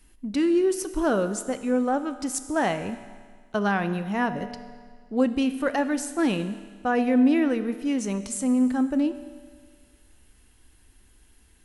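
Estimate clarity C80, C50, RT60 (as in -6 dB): 13.0 dB, 11.5 dB, 1.7 s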